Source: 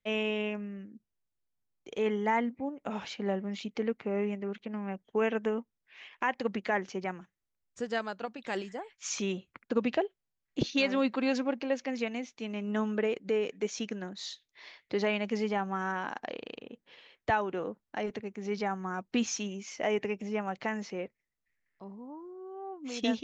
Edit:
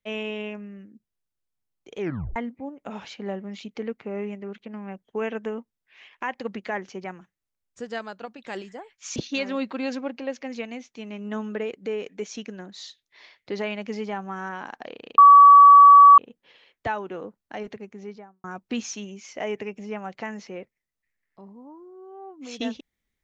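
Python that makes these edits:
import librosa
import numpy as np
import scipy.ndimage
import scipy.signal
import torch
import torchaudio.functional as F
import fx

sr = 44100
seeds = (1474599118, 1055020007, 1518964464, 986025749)

y = fx.studio_fade_out(x, sr, start_s=18.24, length_s=0.63)
y = fx.edit(y, sr, fx.tape_stop(start_s=1.99, length_s=0.37),
    fx.cut(start_s=9.16, length_s=1.43),
    fx.insert_tone(at_s=16.61, length_s=1.0, hz=1140.0, db=-6.5), tone=tone)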